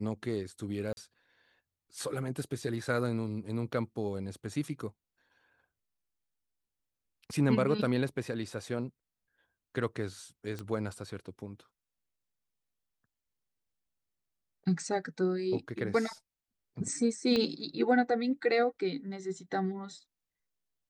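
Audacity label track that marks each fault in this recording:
0.930000	0.970000	drop-out 41 ms
10.590000	10.590000	click −25 dBFS
17.360000	17.360000	click −18 dBFS

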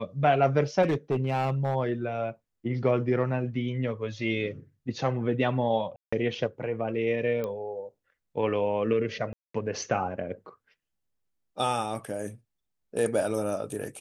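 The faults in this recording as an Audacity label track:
0.820000	1.750000	clipping −21 dBFS
5.960000	6.120000	drop-out 165 ms
7.440000	7.440000	click −20 dBFS
9.330000	9.540000	drop-out 214 ms

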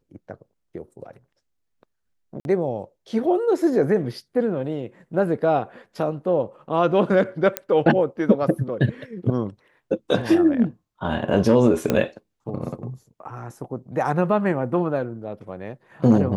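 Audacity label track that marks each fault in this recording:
2.400000	2.450000	drop-out 51 ms
7.570000	7.570000	click −5 dBFS
11.900000	11.900000	click −7 dBFS

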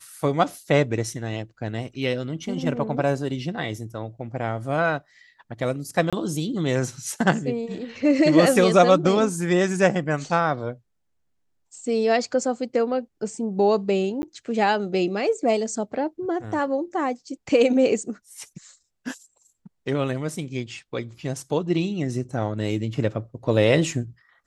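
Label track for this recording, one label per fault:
6.100000	6.130000	drop-out 26 ms
14.220000	14.230000	drop-out 10 ms

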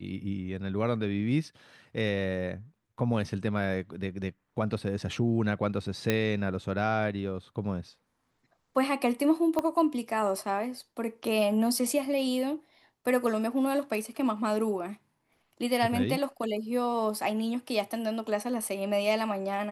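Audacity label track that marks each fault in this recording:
6.100000	6.100000	click −11 dBFS
9.590000	9.590000	click −16 dBFS

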